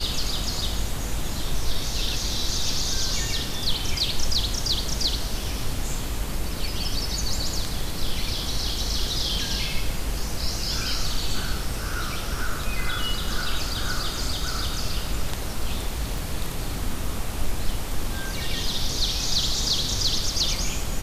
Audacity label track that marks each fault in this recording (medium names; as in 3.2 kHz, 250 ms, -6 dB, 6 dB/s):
16.180000	16.180000	pop